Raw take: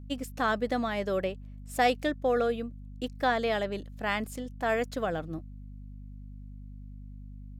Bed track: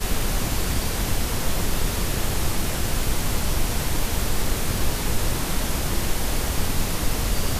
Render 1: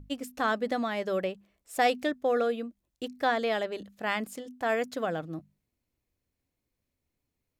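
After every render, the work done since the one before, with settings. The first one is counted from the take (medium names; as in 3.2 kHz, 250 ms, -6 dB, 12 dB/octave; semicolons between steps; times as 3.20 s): hum notches 50/100/150/200/250 Hz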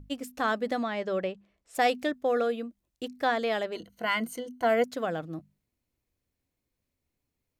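0.83–1.75 s: distance through air 68 m; 3.75–4.84 s: rippled EQ curve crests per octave 1.9, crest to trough 13 dB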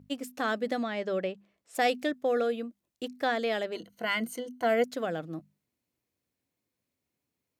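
high-pass 130 Hz 12 dB/octave; dynamic bell 1 kHz, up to -6 dB, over -41 dBFS, Q 1.9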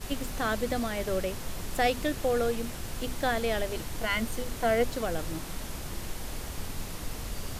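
add bed track -13 dB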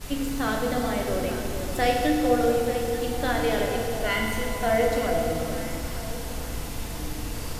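echo whose repeats swap between lows and highs 442 ms, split 990 Hz, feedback 56%, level -6.5 dB; FDN reverb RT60 2.3 s, low-frequency decay 1.3×, high-frequency decay 0.8×, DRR -0.5 dB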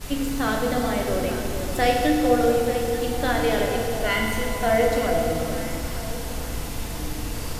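trim +2.5 dB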